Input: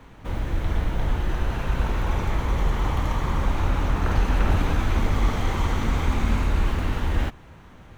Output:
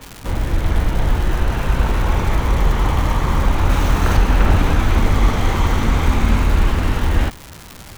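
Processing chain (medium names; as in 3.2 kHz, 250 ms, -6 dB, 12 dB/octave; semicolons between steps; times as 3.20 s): 3.70–4.17 s: treble shelf 4.3 kHz +10 dB; crackle 350 per s -31 dBFS; trim +7 dB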